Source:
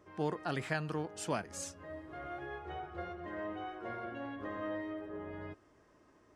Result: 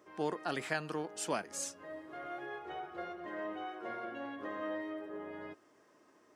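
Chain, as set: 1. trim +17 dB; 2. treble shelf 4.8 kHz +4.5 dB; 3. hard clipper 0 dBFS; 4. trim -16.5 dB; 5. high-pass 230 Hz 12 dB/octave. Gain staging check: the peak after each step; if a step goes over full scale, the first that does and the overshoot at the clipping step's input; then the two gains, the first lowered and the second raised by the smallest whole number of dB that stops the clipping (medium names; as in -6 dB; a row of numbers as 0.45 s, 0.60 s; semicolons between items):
-2.0 dBFS, -1.5 dBFS, -1.5 dBFS, -18.0 dBFS, -18.5 dBFS; nothing clips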